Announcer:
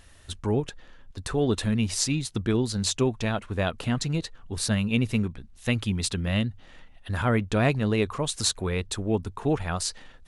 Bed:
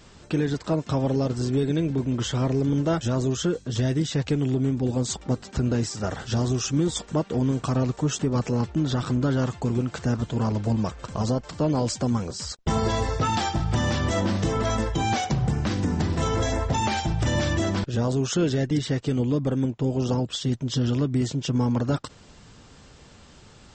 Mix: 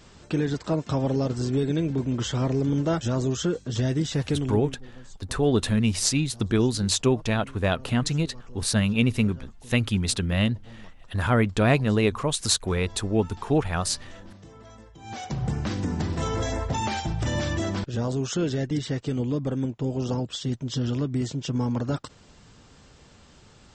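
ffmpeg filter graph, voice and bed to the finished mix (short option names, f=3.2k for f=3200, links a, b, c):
-filter_complex "[0:a]adelay=4050,volume=2.5dB[a];[1:a]volume=19dB,afade=t=out:st=4.29:d=0.49:silence=0.0794328,afade=t=in:st=15.01:d=0.48:silence=0.1[b];[a][b]amix=inputs=2:normalize=0"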